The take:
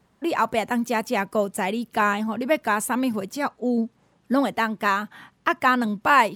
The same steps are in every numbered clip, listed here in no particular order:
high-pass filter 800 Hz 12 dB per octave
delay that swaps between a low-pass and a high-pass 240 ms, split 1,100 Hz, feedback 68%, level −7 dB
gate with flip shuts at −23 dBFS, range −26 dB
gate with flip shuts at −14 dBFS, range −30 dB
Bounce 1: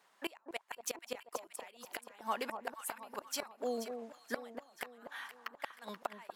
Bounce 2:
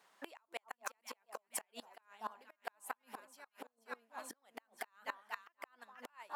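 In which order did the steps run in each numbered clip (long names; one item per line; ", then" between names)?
high-pass filter, then second gate with flip, then first gate with flip, then delay that swaps between a low-pass and a high-pass
delay that swaps between a low-pass and a high-pass, then second gate with flip, then first gate with flip, then high-pass filter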